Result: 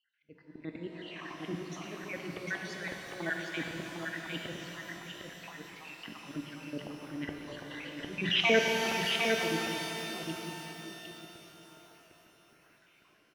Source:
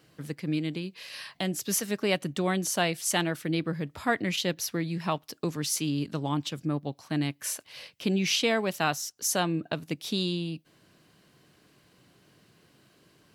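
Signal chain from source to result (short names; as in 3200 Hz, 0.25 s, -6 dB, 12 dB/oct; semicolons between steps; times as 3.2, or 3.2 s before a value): random spectral dropouts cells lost 61%; LPF 2500 Hz 24 dB/oct; bell 98 Hz -12 dB 2.1 oct; notches 60/120/180 Hz; level quantiser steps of 22 dB; auto swell 0.469 s; AGC gain up to 16 dB; echo 0.755 s -4.5 dB; shimmer reverb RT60 3.9 s, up +12 st, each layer -8 dB, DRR 1.5 dB; gain +4 dB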